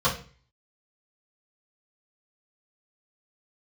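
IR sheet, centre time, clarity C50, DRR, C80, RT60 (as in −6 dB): 21 ms, 9.5 dB, −10.0 dB, 15.0 dB, 0.40 s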